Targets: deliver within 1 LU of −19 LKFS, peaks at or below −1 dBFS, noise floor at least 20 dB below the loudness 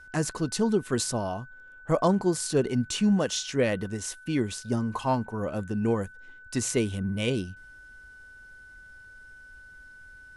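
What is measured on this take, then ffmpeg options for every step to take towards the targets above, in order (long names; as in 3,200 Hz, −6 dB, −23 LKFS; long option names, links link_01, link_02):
interfering tone 1,500 Hz; level of the tone −47 dBFS; integrated loudness −28.0 LKFS; sample peak −11.0 dBFS; target loudness −19.0 LKFS
→ -af "bandreject=frequency=1500:width=30"
-af "volume=9dB"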